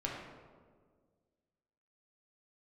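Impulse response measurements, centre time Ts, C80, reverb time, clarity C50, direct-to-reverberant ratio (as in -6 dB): 72 ms, 3.5 dB, 1.7 s, 1.0 dB, -3.5 dB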